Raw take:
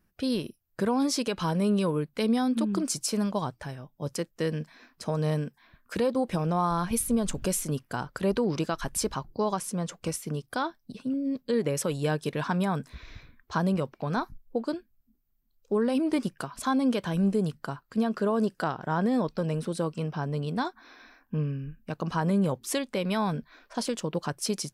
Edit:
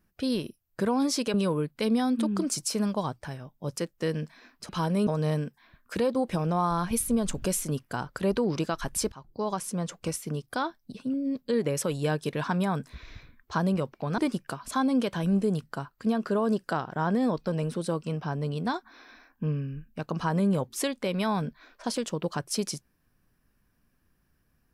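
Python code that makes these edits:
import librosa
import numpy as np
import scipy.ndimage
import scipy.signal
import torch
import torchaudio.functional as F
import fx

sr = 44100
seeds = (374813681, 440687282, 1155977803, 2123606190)

y = fx.edit(x, sr, fx.move(start_s=1.34, length_s=0.38, to_s=5.07),
    fx.fade_in_from(start_s=9.12, length_s=0.67, curve='qsin', floor_db=-21.0),
    fx.cut(start_s=14.18, length_s=1.91), tone=tone)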